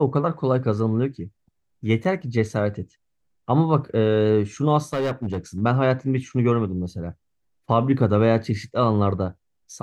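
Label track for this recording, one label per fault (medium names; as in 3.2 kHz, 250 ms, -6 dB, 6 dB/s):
2.040000	2.050000	dropout 6.5 ms
4.930000	5.620000	clipped -20 dBFS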